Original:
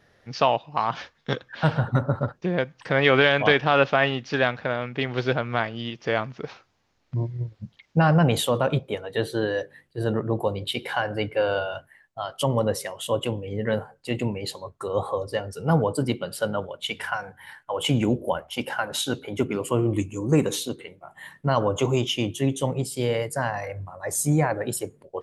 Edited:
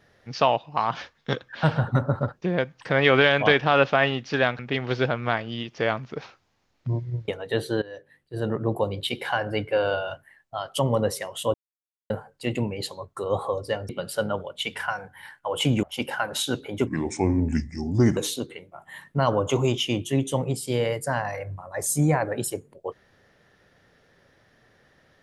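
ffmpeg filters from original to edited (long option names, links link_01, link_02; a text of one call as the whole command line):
ffmpeg -i in.wav -filter_complex "[0:a]asplit=10[link_01][link_02][link_03][link_04][link_05][link_06][link_07][link_08][link_09][link_10];[link_01]atrim=end=4.592[link_11];[link_02]atrim=start=4.858:end=7.552[link_12];[link_03]atrim=start=8.918:end=9.46,asetpts=PTS-STARTPTS,afade=type=out:start_time=0.538:duration=0.004:curve=hsin:silence=0.112202[link_13];[link_04]atrim=start=9.46:end=13.18,asetpts=PTS-STARTPTS,afade=type=in:duration=0.86:silence=0.112202,afade=type=out:start_time=3.716:duration=0.004:curve=hsin[link_14];[link_05]atrim=start=13.18:end=13.74,asetpts=PTS-STARTPTS,volume=0[link_15];[link_06]atrim=start=13.74:end=15.532,asetpts=PTS-STARTPTS,afade=type=in:duration=0.004:curve=hsin[link_16];[link_07]atrim=start=16.128:end=18.072[link_17];[link_08]atrim=start=18.418:end=19.464[link_18];[link_09]atrim=start=19.46:end=20.46,asetpts=PTS-STARTPTS,asetrate=33957,aresample=44100[link_19];[link_10]atrim=start=20.456[link_20];[link_11][link_12]acrossfade=duration=0.004:curve1=hsin:curve2=hsin[link_21];[link_13][link_14][link_15][link_16]concat=n=4:v=0:a=1[link_22];[link_21][link_22]acrossfade=duration=0.004:curve1=hsin:curve2=hsin[link_23];[link_23][link_17]acrossfade=duration=0.004:curve1=hsin:curve2=hsin[link_24];[link_24][link_18]acrossfade=duration=0.004:curve1=hsin:curve2=hsin[link_25];[link_25][link_19]acrossfade=duration=0.004:curve1=hsin:curve2=hsin[link_26];[link_26][link_20]acrossfade=duration=0.004:curve1=hsin:curve2=hsin" out.wav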